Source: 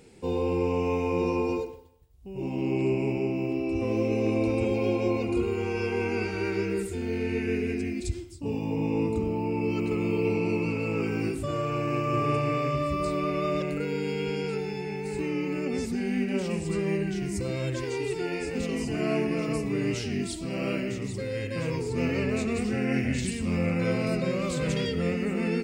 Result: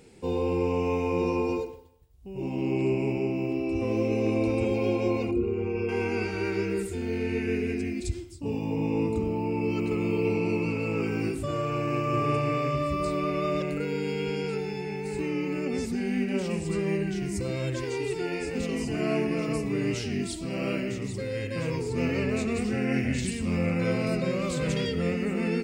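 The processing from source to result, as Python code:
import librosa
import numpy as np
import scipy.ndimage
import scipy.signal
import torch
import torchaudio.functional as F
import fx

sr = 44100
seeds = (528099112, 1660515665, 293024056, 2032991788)

y = fx.envelope_sharpen(x, sr, power=1.5, at=(5.31, 5.89))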